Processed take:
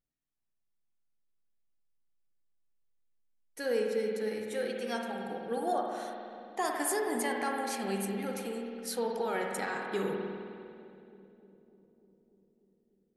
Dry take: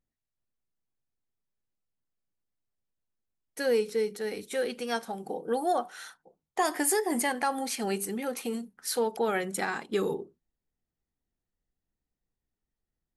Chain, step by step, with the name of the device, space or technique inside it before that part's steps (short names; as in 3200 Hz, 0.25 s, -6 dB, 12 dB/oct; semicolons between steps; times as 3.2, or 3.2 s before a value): dub delay into a spring reverb (darkening echo 0.297 s, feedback 78%, low-pass 960 Hz, level -16 dB; spring tank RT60 2.3 s, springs 51 ms, chirp 50 ms, DRR 0.5 dB); gain -6 dB